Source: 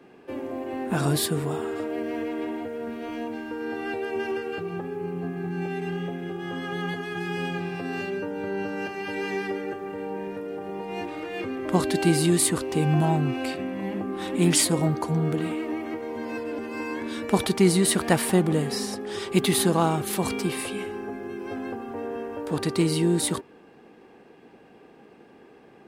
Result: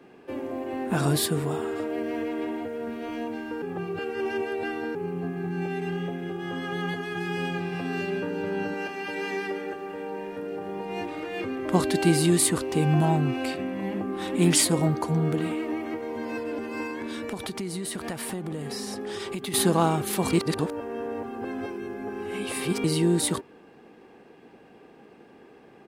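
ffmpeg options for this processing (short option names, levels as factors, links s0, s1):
-filter_complex "[0:a]asplit=2[s0][s1];[s1]afade=t=in:st=7.36:d=0.01,afade=t=out:st=8.08:d=0.01,aecho=0:1:360|720|1080|1440|1800|2160|2520|2880|3240|3600|3960|4320:0.266073|0.212858|0.170286|0.136229|0.108983|0.0871866|0.0697493|0.0557994|0.0446396|0.0357116|0.0285693|0.0228555[s2];[s0][s2]amix=inputs=2:normalize=0,asettb=1/sr,asplit=3[s3][s4][s5];[s3]atrim=end=8.744[s6];[s4]atrim=start=8.74:end=10.38,asetpts=PTS-STARTPTS,afade=t=in:d=0.004:c=qsin,afade=t=out:st=1.636:d=0.004:c=qsin,equalizer=f=110:t=o:w=2.1:g=-9.5[s7];[s5]atrim=start=10.376[s8];[s6][s7]acrossfade=d=0.004:c1=hsin:c2=qsin[s9];[s9][s8]acrossfade=d=0.004:c1=qsin:c2=hsin,asettb=1/sr,asplit=3[s10][s11][s12];[s10]atrim=end=16.864[s13];[s11]atrim=start=16.86:end=19.54,asetpts=PTS-STARTPTS,afade=t=in:d=0.004:c=qsin,afade=t=out:st=2.676:d=0.004:c=qsin,acompressor=threshold=0.0355:ratio=8:attack=3.2:release=140:knee=1:detection=peak[s14];[s12]atrim=start=19.536[s15];[s13][s14]acrossfade=d=0.004:c1=hsin:c2=qsin[s16];[s16][s15]acrossfade=d=0.004:c1=qsin:c2=hsin,asplit=5[s17][s18][s19][s20][s21];[s17]atrim=end=3.622[s22];[s18]atrim=start=3.618:end=4.952,asetpts=PTS-STARTPTS,areverse[s23];[s19]atrim=start=4.948:end=20.332[s24];[s20]atrim=start=20.328:end=22.842,asetpts=PTS-STARTPTS,areverse[s25];[s21]atrim=start=22.838[s26];[s22][s23]acrossfade=d=0.004:c1=hsin:c2=hsin[s27];[s27][s24]acrossfade=d=0.004:c1=hsin:c2=hsin[s28];[s28][s25]acrossfade=d=0.004:c1=hsin:c2=hsin[s29];[s29][s26]acrossfade=d=0.004:c1=hsin:c2=hsin"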